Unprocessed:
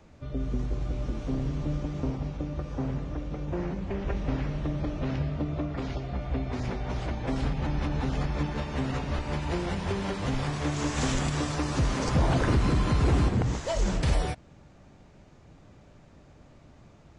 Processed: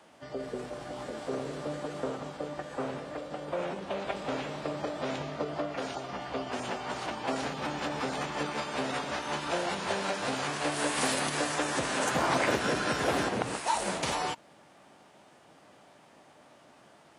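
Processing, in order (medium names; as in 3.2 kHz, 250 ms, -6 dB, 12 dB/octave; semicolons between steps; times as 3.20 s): high-pass 310 Hz 12 dB/octave; formant shift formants +5 st; trim +2.5 dB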